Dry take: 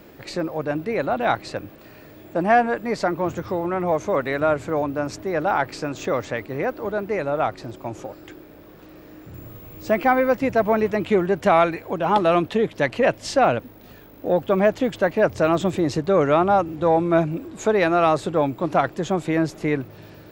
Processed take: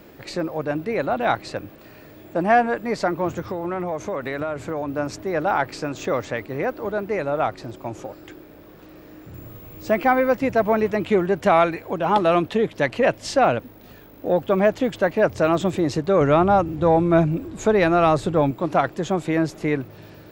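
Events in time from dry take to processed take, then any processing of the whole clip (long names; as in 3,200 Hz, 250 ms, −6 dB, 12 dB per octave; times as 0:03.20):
0:03.47–0:04.97: downward compressor, threshold −22 dBFS
0:16.21–0:18.51: low-shelf EQ 140 Hz +11.5 dB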